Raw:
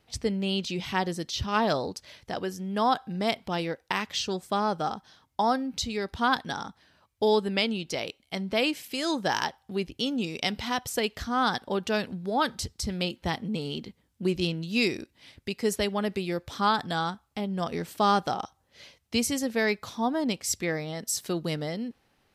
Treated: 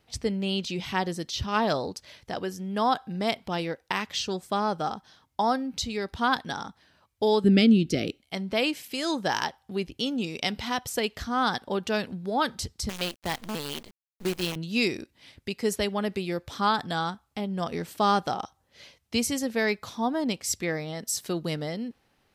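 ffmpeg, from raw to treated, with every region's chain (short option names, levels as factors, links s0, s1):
-filter_complex "[0:a]asettb=1/sr,asplit=3[s0][s1][s2];[s0]atrim=end=7.444[s3];[s1]atrim=start=7.44:end=8.19,asetpts=PTS-STARTPTS,afade=t=in:d=0.004:c=qsin,afade=t=out:st=0.746:d=0.004:c=qsin,asuperstop=centerf=970:order=20:qfactor=2.5,lowshelf=f=440:t=q:w=1.5:g=11[s4];[s2]atrim=start=8.186[s5];[s3][s4]acrossfade=d=0.004:c1=hsin:c2=qsin[s6];[s6][s5]acrossfade=d=0.004:c1=qsin:c2=hsin,asettb=1/sr,asplit=3[s7][s8][s9];[s7]atrim=end=12.894[s10];[s8]atrim=start=12.89:end=14.56,asetpts=PTS-STARTPTS,afade=t=in:d=0.004:c=qsin,afade=t=out:st=1.666:d=0.004:c=qsin,lowshelf=f=230:g=-7.5,acrusher=bits=6:dc=4:mix=0:aa=0.000001[s11];[s9]atrim=start=14.556[s12];[s10][s11]acrossfade=d=0.004:c1=hsin:c2=qsin[s13];[s13][s12]acrossfade=d=0.004:c1=qsin:c2=hsin"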